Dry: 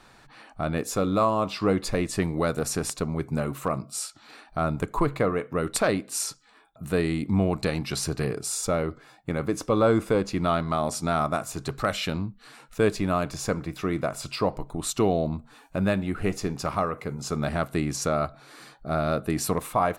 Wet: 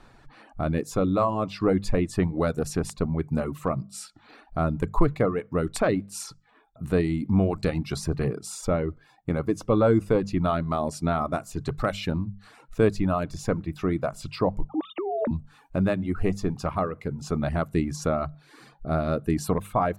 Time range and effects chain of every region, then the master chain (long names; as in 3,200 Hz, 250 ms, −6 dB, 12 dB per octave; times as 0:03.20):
0:14.69–0:15.31: three sine waves on the formant tracks + compressor whose output falls as the input rises −27 dBFS
whole clip: reverb reduction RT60 0.66 s; spectral tilt −2 dB per octave; mains-hum notches 50/100/150/200 Hz; level −1 dB